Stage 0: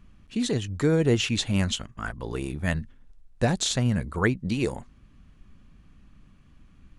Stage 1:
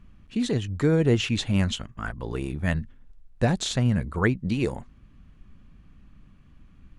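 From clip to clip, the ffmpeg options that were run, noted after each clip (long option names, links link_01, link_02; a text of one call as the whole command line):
ffmpeg -i in.wav -af "bass=frequency=250:gain=2,treble=frequency=4000:gain=-5" out.wav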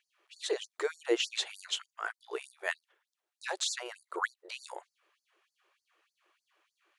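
ffmpeg -i in.wav -af "afftfilt=real='re*gte(b*sr/1024,310*pow(4400/310,0.5+0.5*sin(2*PI*3.3*pts/sr)))':imag='im*gte(b*sr/1024,310*pow(4400/310,0.5+0.5*sin(2*PI*3.3*pts/sr)))':win_size=1024:overlap=0.75,volume=-2dB" out.wav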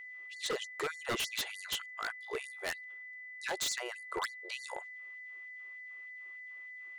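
ffmpeg -i in.wav -af "aeval=exprs='0.0355*(abs(mod(val(0)/0.0355+3,4)-2)-1)':channel_layout=same,aeval=exprs='val(0)+0.00501*sin(2*PI*2000*n/s)':channel_layout=same,volume=1dB" out.wav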